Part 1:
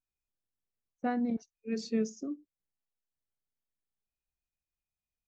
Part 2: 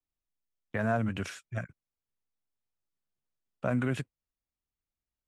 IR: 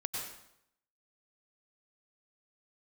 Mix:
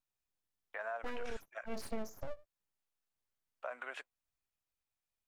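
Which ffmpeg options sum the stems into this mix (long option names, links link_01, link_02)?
-filter_complex "[0:a]aeval=exprs='abs(val(0))':channel_layout=same,volume=0.5dB[link_01];[1:a]highpass=frequency=640:width=0.5412,highpass=frequency=640:width=1.3066,aemphasis=mode=reproduction:type=75kf,alimiter=level_in=5.5dB:limit=-24dB:level=0:latency=1:release=180,volume=-5.5dB,volume=-0.5dB,asplit=2[link_02][link_03];[link_03]apad=whole_len=232549[link_04];[link_01][link_04]sidechaincompress=threshold=-47dB:ratio=8:attack=26:release=285[link_05];[link_05][link_02]amix=inputs=2:normalize=0,acompressor=threshold=-35dB:ratio=4"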